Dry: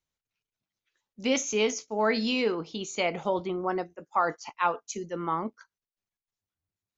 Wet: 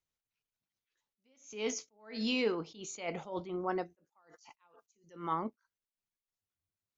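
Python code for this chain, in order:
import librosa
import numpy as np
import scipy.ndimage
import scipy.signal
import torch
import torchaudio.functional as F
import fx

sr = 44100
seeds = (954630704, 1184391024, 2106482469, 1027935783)

y = fx.high_shelf(x, sr, hz=fx.line((4.21, 5200.0), (5.32, 3200.0)), db=11.0, at=(4.21, 5.32), fade=0.02)
y = fx.attack_slew(y, sr, db_per_s=130.0)
y = y * 10.0 ** (-4.5 / 20.0)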